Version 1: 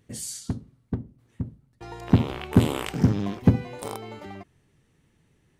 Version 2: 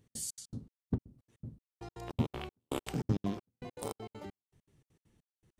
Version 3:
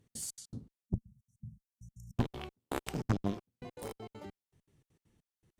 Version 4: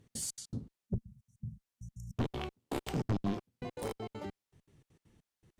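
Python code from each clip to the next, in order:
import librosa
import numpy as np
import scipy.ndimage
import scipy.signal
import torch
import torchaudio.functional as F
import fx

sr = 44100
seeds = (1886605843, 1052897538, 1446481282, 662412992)

y1 = fx.peak_eq(x, sr, hz=1900.0, db=-5.5, octaves=1.6)
y1 = fx.step_gate(y1, sr, bpm=199, pattern='x.xx.x.xx...', floor_db=-60.0, edge_ms=4.5)
y1 = F.gain(torch.from_numpy(y1), -4.0).numpy()
y2 = fx.spec_erase(y1, sr, start_s=0.85, length_s=1.32, low_hz=230.0, high_hz=5400.0)
y2 = fx.cheby_harmonics(y2, sr, harmonics=(6, 8), levels_db=(-8, -13), full_scale_db=-17.5)
y2 = F.gain(torch.from_numpy(y2), -1.5).numpy()
y3 = fx.high_shelf(y2, sr, hz=10000.0, db=-7.0)
y3 = 10.0 ** (-31.5 / 20.0) * np.tanh(y3 / 10.0 ** (-31.5 / 20.0))
y3 = F.gain(torch.from_numpy(y3), 5.5).numpy()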